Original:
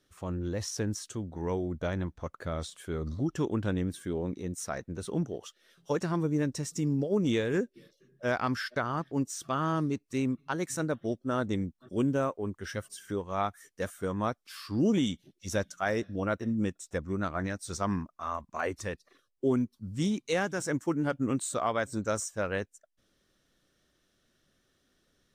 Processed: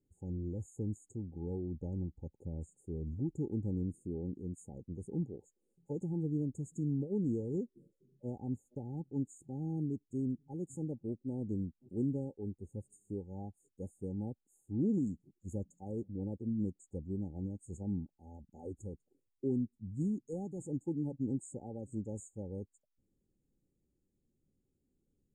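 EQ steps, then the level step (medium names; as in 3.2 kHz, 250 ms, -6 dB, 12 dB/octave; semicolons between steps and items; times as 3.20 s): brick-wall FIR band-stop 870–6500 Hz; distance through air 87 m; static phaser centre 1.6 kHz, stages 4; -3.5 dB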